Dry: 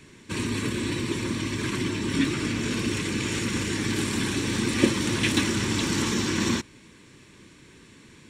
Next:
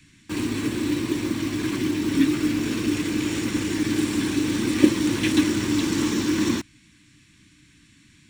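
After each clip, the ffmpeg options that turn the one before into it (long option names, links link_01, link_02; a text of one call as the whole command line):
ffmpeg -i in.wav -filter_complex "[0:a]equalizer=frequency=300:width_type=o:width=0.27:gain=13.5,acrossover=split=230|1300[link_01][link_02][link_03];[link_02]acrusher=bits=5:mix=0:aa=0.000001[link_04];[link_01][link_04][link_03]amix=inputs=3:normalize=0,volume=-2dB" out.wav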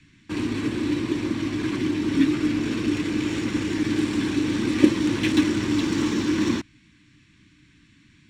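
ffmpeg -i in.wav -af "adynamicsmooth=sensitivity=2.5:basefreq=5200" out.wav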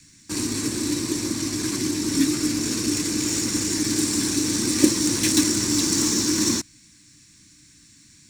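ffmpeg -i in.wav -af "aexciter=amount=4.7:drive=9.8:freq=4600,volume=-1.5dB" out.wav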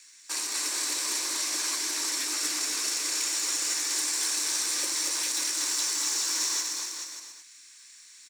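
ffmpeg -i in.wav -filter_complex "[0:a]highpass=frequency=590:width=0.5412,highpass=frequency=590:width=1.3066,alimiter=limit=-19.5dB:level=0:latency=1:release=256,asplit=2[link_01][link_02];[link_02]aecho=0:1:240|432|585.6|708.5|806.8:0.631|0.398|0.251|0.158|0.1[link_03];[link_01][link_03]amix=inputs=2:normalize=0" out.wav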